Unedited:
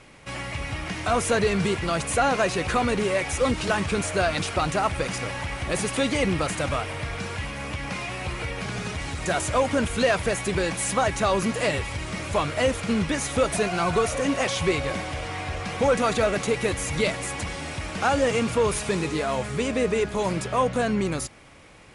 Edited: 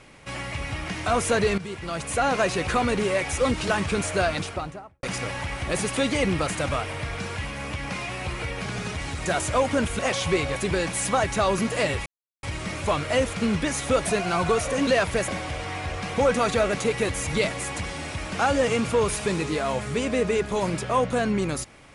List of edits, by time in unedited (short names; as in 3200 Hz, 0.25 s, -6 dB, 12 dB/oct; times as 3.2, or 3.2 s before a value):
1.58–2.39 fade in, from -14 dB
4.2–5.03 studio fade out
9.99–10.4 swap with 14.34–14.91
11.9 insert silence 0.37 s